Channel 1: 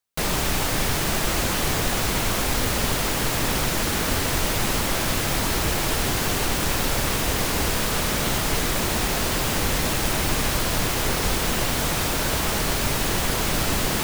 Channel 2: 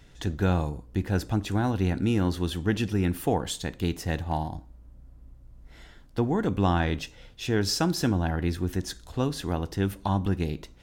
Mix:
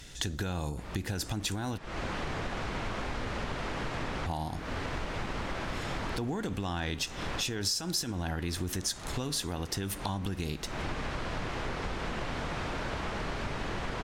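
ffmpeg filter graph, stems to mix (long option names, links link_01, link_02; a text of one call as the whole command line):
ffmpeg -i stem1.wav -i stem2.wav -filter_complex "[0:a]lowpass=1600,dynaudnorm=framelen=470:gausssize=3:maxgain=8dB,adelay=600,volume=-15dB[link_01];[1:a]alimiter=limit=-20.5dB:level=0:latency=1:release=77,volume=2.5dB,asplit=3[link_02][link_03][link_04];[link_02]atrim=end=1.78,asetpts=PTS-STARTPTS,afade=type=out:start_time=1.776:duration=0.004:curve=hsin[link_05];[link_03]atrim=start=1.78:end=4.26,asetpts=PTS-STARTPTS,volume=0[link_06];[link_04]atrim=start=4.26,asetpts=PTS-STARTPTS,afade=type=in:duration=0.004:curve=hsin[link_07];[link_05][link_06][link_07]concat=n=3:v=0:a=1,asplit=2[link_08][link_09];[link_09]apad=whole_len=645247[link_10];[link_01][link_10]sidechaincompress=threshold=-40dB:ratio=4:attack=7.4:release=251[link_11];[link_11][link_08]amix=inputs=2:normalize=0,equalizer=frequency=7900:width_type=o:width=2.9:gain=13,acompressor=threshold=-31dB:ratio=4" out.wav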